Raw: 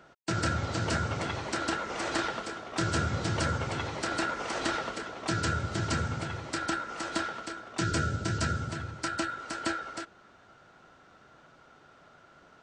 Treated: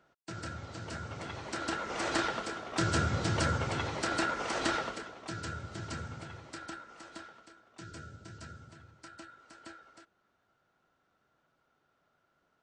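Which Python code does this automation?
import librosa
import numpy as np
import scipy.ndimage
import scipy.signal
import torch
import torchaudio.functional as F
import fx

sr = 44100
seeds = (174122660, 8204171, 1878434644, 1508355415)

y = fx.gain(x, sr, db=fx.line((0.9, -12.0), (2.04, -0.5), (4.79, -0.5), (5.27, -10.0), (6.37, -10.0), (7.54, -18.0)))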